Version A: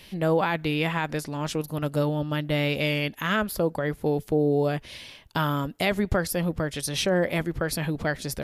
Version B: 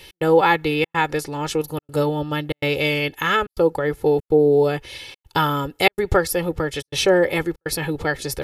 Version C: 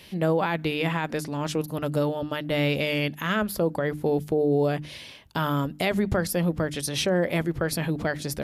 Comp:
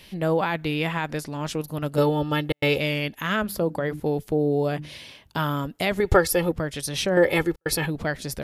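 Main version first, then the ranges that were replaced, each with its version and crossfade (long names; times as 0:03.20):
A
0:01.98–0:02.78: punch in from B
0:03.44–0:04.00: punch in from C
0:04.72–0:05.38: punch in from C
0:06.00–0:06.52: punch in from B
0:07.17–0:07.86: punch in from B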